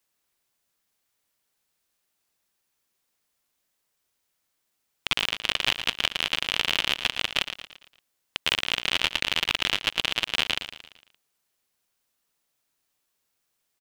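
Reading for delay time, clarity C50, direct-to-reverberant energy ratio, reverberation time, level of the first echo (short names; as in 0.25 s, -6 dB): 0.114 s, none, none, none, -10.5 dB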